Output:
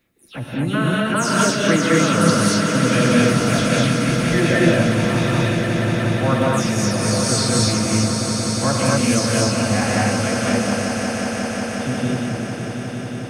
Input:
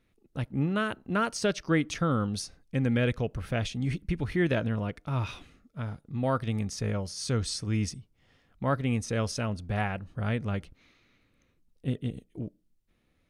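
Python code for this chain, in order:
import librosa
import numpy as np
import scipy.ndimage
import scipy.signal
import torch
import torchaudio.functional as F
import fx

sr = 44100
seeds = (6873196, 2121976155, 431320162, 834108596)

y = fx.spec_delay(x, sr, highs='early', ms=166)
y = fx.highpass(y, sr, hz=140.0, slope=6)
y = fx.high_shelf(y, sr, hz=6900.0, db=9.0)
y = fx.echo_swell(y, sr, ms=180, loudest=5, wet_db=-10)
y = fx.rev_gated(y, sr, seeds[0], gate_ms=280, shape='rising', drr_db=-4.0)
y = F.gain(torch.from_numpy(y), 6.0).numpy()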